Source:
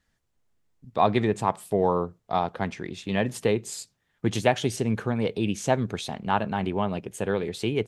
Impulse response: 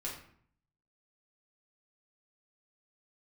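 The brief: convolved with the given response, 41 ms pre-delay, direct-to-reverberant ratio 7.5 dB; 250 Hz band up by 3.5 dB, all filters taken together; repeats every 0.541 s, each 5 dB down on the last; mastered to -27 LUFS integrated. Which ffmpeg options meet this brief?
-filter_complex "[0:a]equalizer=f=250:t=o:g=4.5,aecho=1:1:541|1082|1623|2164|2705|3246|3787:0.562|0.315|0.176|0.0988|0.0553|0.031|0.0173,asplit=2[a][b];[1:a]atrim=start_sample=2205,adelay=41[c];[b][c]afir=irnorm=-1:irlink=0,volume=-8.5dB[d];[a][d]amix=inputs=2:normalize=0,volume=-3.5dB"

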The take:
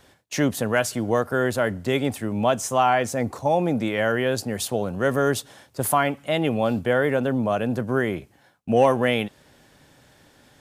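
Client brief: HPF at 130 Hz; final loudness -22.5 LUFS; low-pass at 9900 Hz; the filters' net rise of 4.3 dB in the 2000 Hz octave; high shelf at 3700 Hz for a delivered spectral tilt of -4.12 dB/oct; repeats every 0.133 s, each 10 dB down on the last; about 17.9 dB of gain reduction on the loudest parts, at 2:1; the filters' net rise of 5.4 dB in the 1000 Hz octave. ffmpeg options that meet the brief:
-af "highpass=130,lowpass=9.9k,equalizer=f=1k:t=o:g=7,equalizer=f=2k:t=o:g=4.5,highshelf=f=3.7k:g=-7,acompressor=threshold=-44dB:ratio=2,aecho=1:1:133|266|399|532:0.316|0.101|0.0324|0.0104,volume=13dB"

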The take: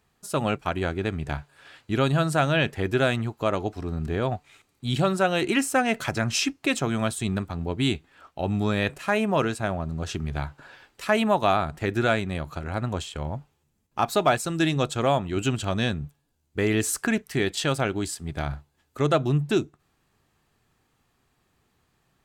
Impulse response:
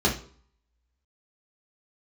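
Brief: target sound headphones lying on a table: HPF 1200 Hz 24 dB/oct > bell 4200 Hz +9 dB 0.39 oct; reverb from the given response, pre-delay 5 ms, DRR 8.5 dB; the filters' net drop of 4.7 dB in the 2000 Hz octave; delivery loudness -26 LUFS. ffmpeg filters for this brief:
-filter_complex "[0:a]equalizer=f=2k:t=o:g=-6.5,asplit=2[a][b];[1:a]atrim=start_sample=2205,adelay=5[c];[b][c]afir=irnorm=-1:irlink=0,volume=-22.5dB[d];[a][d]amix=inputs=2:normalize=0,highpass=f=1.2k:w=0.5412,highpass=f=1.2k:w=1.3066,equalizer=f=4.2k:t=o:w=0.39:g=9,volume=6dB"

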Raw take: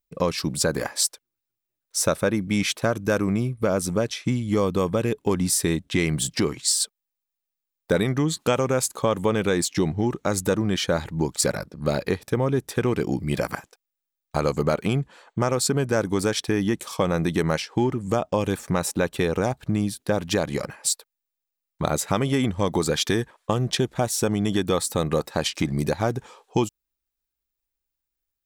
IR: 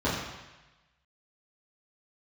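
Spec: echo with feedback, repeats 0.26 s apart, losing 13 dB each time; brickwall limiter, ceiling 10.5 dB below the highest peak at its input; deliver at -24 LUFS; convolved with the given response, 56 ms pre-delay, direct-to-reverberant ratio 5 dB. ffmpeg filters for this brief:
-filter_complex "[0:a]alimiter=limit=-17dB:level=0:latency=1,aecho=1:1:260|520|780:0.224|0.0493|0.0108,asplit=2[a][b];[1:a]atrim=start_sample=2205,adelay=56[c];[b][c]afir=irnorm=-1:irlink=0,volume=-18dB[d];[a][d]amix=inputs=2:normalize=0,volume=1.5dB"

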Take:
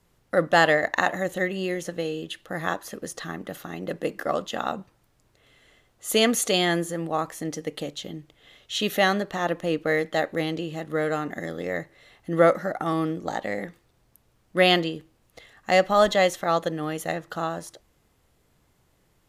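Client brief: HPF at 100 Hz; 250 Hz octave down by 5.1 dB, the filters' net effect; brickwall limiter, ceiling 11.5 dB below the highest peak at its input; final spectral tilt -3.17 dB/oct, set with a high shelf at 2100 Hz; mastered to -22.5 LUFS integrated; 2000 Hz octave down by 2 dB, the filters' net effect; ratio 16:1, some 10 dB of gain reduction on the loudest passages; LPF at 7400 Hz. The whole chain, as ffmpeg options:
-af "highpass=100,lowpass=7.4k,equalizer=f=250:t=o:g=-8,equalizer=f=2k:t=o:g=-6,highshelf=f=2.1k:g=7,acompressor=threshold=-23dB:ratio=16,volume=10.5dB,alimiter=limit=-10dB:level=0:latency=1"

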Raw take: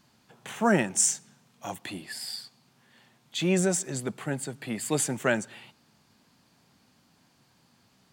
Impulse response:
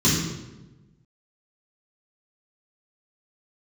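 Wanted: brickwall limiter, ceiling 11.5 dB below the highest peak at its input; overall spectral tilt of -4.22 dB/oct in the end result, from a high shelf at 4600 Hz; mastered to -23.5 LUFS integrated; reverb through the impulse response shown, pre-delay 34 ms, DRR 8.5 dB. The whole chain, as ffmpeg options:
-filter_complex "[0:a]highshelf=f=4.6k:g=7,alimiter=limit=-16.5dB:level=0:latency=1,asplit=2[a][b];[1:a]atrim=start_sample=2205,adelay=34[c];[b][c]afir=irnorm=-1:irlink=0,volume=-25dB[d];[a][d]amix=inputs=2:normalize=0,volume=3dB"

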